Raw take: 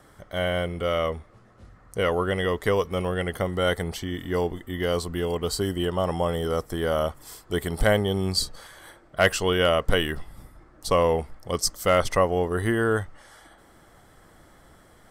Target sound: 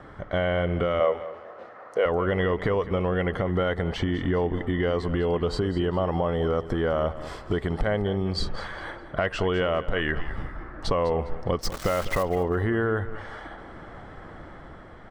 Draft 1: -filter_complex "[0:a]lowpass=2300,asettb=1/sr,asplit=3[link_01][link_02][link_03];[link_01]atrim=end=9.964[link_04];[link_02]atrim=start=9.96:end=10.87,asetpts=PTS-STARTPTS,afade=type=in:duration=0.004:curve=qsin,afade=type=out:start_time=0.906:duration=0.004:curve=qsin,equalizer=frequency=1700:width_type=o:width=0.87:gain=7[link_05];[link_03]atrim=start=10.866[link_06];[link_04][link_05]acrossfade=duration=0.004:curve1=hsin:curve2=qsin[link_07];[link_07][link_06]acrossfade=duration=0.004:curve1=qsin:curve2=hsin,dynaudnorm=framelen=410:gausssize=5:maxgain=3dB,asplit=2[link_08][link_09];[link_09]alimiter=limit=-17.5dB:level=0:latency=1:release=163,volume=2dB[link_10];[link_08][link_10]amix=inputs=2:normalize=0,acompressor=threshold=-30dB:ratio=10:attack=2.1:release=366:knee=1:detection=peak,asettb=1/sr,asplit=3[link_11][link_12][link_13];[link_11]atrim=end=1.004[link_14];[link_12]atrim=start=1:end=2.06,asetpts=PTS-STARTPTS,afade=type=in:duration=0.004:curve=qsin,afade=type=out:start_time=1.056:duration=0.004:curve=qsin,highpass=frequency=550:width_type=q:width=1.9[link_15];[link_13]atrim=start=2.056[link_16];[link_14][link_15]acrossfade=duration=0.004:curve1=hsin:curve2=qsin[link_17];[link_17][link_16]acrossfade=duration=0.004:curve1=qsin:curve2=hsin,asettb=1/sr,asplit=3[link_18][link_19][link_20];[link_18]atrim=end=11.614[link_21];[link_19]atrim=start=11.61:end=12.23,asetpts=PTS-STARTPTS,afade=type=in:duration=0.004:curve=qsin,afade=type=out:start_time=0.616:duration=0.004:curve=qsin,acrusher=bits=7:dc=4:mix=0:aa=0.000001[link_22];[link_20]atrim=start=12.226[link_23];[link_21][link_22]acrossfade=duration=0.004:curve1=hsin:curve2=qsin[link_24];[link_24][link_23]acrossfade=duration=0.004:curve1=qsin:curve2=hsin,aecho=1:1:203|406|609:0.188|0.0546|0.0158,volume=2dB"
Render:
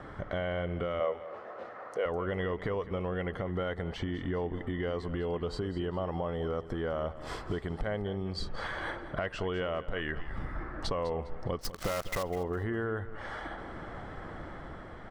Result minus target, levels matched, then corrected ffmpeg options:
downward compressor: peak gain reduction +8.5 dB
-filter_complex "[0:a]lowpass=2300,asettb=1/sr,asplit=3[link_01][link_02][link_03];[link_01]atrim=end=9.964[link_04];[link_02]atrim=start=9.96:end=10.87,asetpts=PTS-STARTPTS,afade=type=in:duration=0.004:curve=qsin,afade=type=out:start_time=0.906:duration=0.004:curve=qsin,equalizer=frequency=1700:width_type=o:width=0.87:gain=7[link_05];[link_03]atrim=start=10.866[link_06];[link_04][link_05]acrossfade=duration=0.004:curve1=hsin:curve2=qsin[link_07];[link_07][link_06]acrossfade=duration=0.004:curve1=qsin:curve2=hsin,dynaudnorm=framelen=410:gausssize=5:maxgain=3dB,asplit=2[link_08][link_09];[link_09]alimiter=limit=-17.5dB:level=0:latency=1:release=163,volume=2dB[link_10];[link_08][link_10]amix=inputs=2:normalize=0,acompressor=threshold=-20.5dB:ratio=10:attack=2.1:release=366:knee=1:detection=peak,asettb=1/sr,asplit=3[link_11][link_12][link_13];[link_11]atrim=end=1.004[link_14];[link_12]atrim=start=1:end=2.06,asetpts=PTS-STARTPTS,afade=type=in:duration=0.004:curve=qsin,afade=type=out:start_time=1.056:duration=0.004:curve=qsin,highpass=frequency=550:width_type=q:width=1.9[link_15];[link_13]atrim=start=2.056[link_16];[link_14][link_15]acrossfade=duration=0.004:curve1=hsin:curve2=qsin[link_17];[link_17][link_16]acrossfade=duration=0.004:curve1=qsin:curve2=hsin,asettb=1/sr,asplit=3[link_18][link_19][link_20];[link_18]atrim=end=11.614[link_21];[link_19]atrim=start=11.61:end=12.23,asetpts=PTS-STARTPTS,afade=type=in:duration=0.004:curve=qsin,afade=type=out:start_time=0.616:duration=0.004:curve=qsin,acrusher=bits=7:dc=4:mix=0:aa=0.000001[link_22];[link_20]atrim=start=12.226[link_23];[link_21][link_22]acrossfade=duration=0.004:curve1=hsin:curve2=qsin[link_24];[link_24][link_23]acrossfade=duration=0.004:curve1=qsin:curve2=hsin,aecho=1:1:203|406|609:0.188|0.0546|0.0158,volume=2dB"

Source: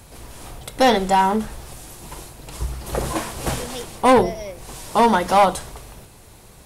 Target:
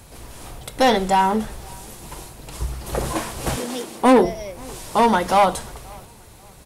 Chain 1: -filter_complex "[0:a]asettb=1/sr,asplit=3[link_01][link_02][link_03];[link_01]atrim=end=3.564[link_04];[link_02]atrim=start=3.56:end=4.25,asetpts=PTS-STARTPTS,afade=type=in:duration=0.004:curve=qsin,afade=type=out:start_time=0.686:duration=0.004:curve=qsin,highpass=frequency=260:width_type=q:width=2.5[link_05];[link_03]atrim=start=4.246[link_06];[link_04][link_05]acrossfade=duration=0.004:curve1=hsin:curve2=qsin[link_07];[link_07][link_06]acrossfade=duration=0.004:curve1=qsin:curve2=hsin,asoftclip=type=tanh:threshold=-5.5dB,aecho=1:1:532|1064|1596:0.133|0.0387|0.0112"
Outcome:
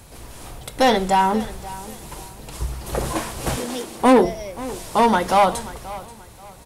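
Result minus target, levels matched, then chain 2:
echo-to-direct +9 dB
-filter_complex "[0:a]asettb=1/sr,asplit=3[link_01][link_02][link_03];[link_01]atrim=end=3.564[link_04];[link_02]atrim=start=3.56:end=4.25,asetpts=PTS-STARTPTS,afade=type=in:duration=0.004:curve=qsin,afade=type=out:start_time=0.686:duration=0.004:curve=qsin,highpass=frequency=260:width_type=q:width=2.5[link_05];[link_03]atrim=start=4.246[link_06];[link_04][link_05]acrossfade=duration=0.004:curve1=hsin:curve2=qsin[link_07];[link_07][link_06]acrossfade=duration=0.004:curve1=qsin:curve2=hsin,asoftclip=type=tanh:threshold=-5.5dB,aecho=1:1:532|1064:0.0473|0.0137"

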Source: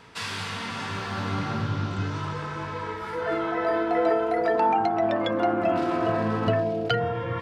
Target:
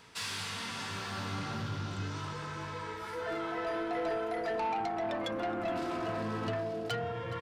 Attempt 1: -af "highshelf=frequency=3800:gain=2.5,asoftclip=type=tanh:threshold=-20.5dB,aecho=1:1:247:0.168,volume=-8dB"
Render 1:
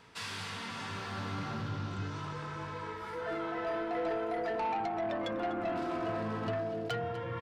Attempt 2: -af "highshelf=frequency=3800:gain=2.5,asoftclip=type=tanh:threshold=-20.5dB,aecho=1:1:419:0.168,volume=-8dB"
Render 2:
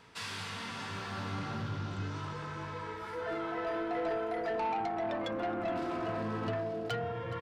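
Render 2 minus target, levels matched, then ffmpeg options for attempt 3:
8,000 Hz band −5.5 dB
-af "highshelf=frequency=3800:gain=11,asoftclip=type=tanh:threshold=-20.5dB,aecho=1:1:419:0.168,volume=-8dB"

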